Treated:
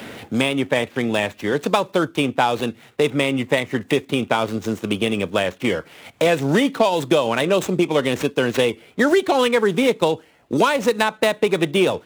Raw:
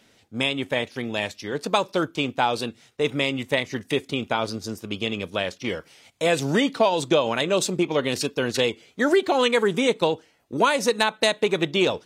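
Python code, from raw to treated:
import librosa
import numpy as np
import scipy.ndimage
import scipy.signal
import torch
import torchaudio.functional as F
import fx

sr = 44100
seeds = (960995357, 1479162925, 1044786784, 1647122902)

y = scipy.ndimage.median_filter(x, 9, mode='constant')
y = scipy.signal.sosfilt(scipy.signal.butter(2, 48.0, 'highpass', fs=sr, output='sos'), y)
y = fx.band_squash(y, sr, depth_pct=70)
y = F.gain(torch.from_numpy(y), 4.0).numpy()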